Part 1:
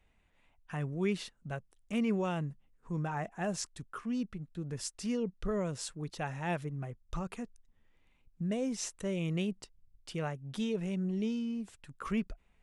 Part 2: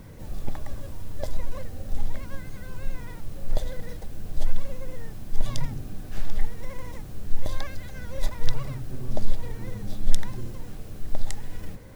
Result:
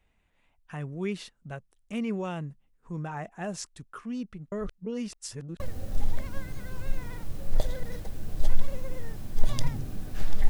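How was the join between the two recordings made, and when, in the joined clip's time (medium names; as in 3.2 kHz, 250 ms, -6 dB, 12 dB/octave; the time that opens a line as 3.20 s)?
part 1
4.52–5.60 s: reverse
5.60 s: go over to part 2 from 1.57 s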